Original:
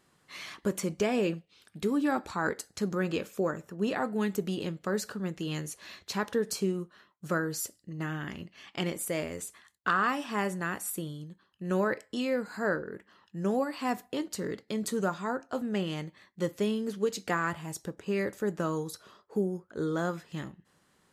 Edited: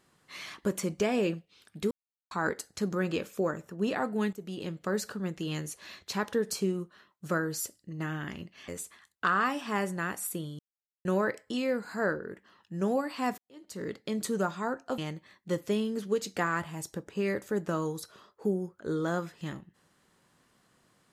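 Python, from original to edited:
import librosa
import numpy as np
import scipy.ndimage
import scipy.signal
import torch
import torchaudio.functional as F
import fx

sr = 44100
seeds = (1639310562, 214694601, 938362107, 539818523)

y = fx.edit(x, sr, fx.silence(start_s=1.91, length_s=0.4),
    fx.fade_in_from(start_s=4.33, length_s=0.47, floor_db=-15.5),
    fx.cut(start_s=8.68, length_s=0.63),
    fx.silence(start_s=11.22, length_s=0.46),
    fx.fade_in_span(start_s=14.01, length_s=0.52, curve='qua'),
    fx.cut(start_s=15.61, length_s=0.28), tone=tone)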